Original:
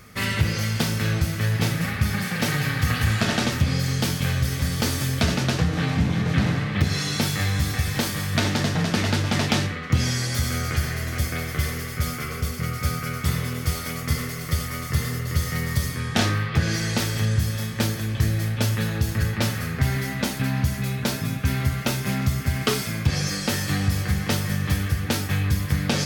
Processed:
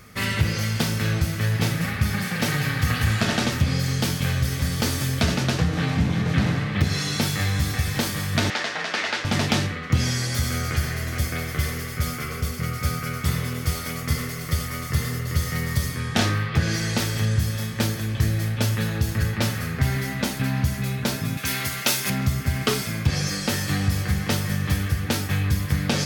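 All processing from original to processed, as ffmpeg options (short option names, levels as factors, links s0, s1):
-filter_complex "[0:a]asettb=1/sr,asplit=3[s0][s1][s2];[s0]atrim=end=8.504[s3];[s1]atrim=start=8.5:end=9.25,asetpts=PTS-STARTPTS,afade=t=in:d=0.004:c=qsin,afade=t=out:st=0.746:d=0.004:c=qsin,highpass=550,lowpass=6100,equalizer=f=1900:t=o:w=1.1:g=4.5[s4];[s2]atrim=start=9.246[s5];[s3][s4]acrossfade=d=0.004:c1=hsin:c2=qsin[s6];[s6][s5]acrossfade=d=0.004:c1=qsin:c2=hsin,asettb=1/sr,asplit=3[s7][s8][s9];[s7]atrim=end=21.374[s10];[s8]atrim=start=21.37:end=22.1,asetpts=PTS-STARTPTS,afade=t=in:d=0.004:c=qsin,afade=t=out:st=0.726:d=0.004:c=qsin,highpass=f=360:p=1,highshelf=f=2100:g=9.5[s11];[s9]atrim=start=22.096[s12];[s10][s11]acrossfade=d=0.004:c1=hsin:c2=qsin[s13];[s13][s12]acrossfade=d=0.004:c1=qsin:c2=hsin"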